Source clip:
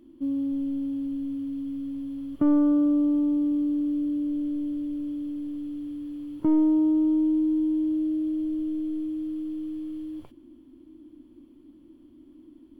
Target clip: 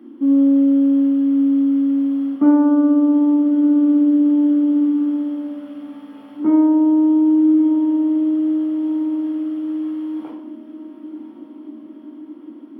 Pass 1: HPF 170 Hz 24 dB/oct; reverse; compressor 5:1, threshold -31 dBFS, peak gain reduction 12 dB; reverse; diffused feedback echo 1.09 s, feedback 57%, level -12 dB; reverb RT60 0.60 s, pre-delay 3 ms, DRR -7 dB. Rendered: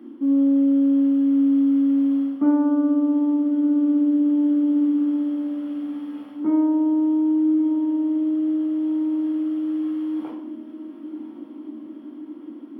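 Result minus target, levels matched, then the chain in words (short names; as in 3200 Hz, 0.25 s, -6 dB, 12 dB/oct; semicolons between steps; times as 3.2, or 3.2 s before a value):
compressor: peak gain reduction +5.5 dB
HPF 170 Hz 24 dB/oct; reverse; compressor 5:1, threshold -24 dBFS, peak gain reduction 6 dB; reverse; diffused feedback echo 1.09 s, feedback 57%, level -12 dB; reverb RT60 0.60 s, pre-delay 3 ms, DRR -7 dB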